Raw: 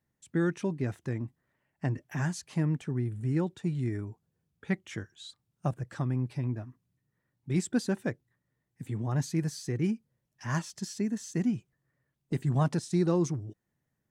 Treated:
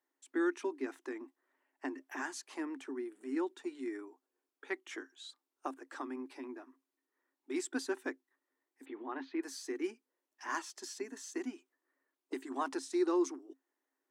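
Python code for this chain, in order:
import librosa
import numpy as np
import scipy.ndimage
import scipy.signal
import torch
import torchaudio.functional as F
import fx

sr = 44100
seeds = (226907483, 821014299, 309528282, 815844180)

y = fx.steep_lowpass(x, sr, hz=3700.0, slope=36, at=(8.84, 9.42), fade=0.02)
y = fx.dynamic_eq(y, sr, hz=570.0, q=1.5, threshold_db=-47.0, ratio=4.0, max_db=-7)
y = scipy.signal.sosfilt(scipy.signal.cheby1(6, 6, 260.0, 'highpass', fs=sr, output='sos'), y)
y = y * 10.0 ** (2.0 / 20.0)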